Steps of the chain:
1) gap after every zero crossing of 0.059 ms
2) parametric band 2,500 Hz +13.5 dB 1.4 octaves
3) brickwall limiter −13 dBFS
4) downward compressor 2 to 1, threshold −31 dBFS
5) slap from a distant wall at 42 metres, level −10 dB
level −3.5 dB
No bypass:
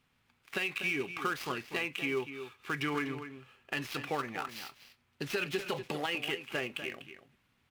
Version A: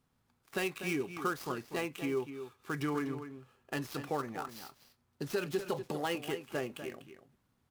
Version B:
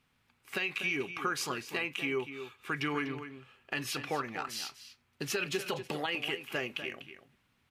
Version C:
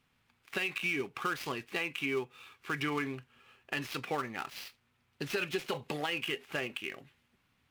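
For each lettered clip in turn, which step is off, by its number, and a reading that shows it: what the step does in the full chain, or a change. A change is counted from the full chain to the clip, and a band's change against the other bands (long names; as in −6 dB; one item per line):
2, 4 kHz band −7.5 dB
1, distortion level −15 dB
5, echo-to-direct ratio −11.0 dB to none audible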